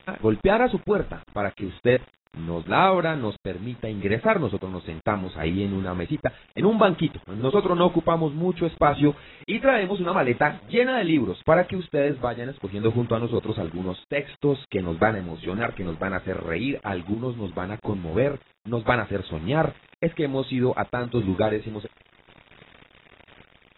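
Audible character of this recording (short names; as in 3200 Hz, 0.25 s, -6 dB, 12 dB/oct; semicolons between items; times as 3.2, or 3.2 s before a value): a quantiser's noise floor 8-bit, dither none; random-step tremolo; AAC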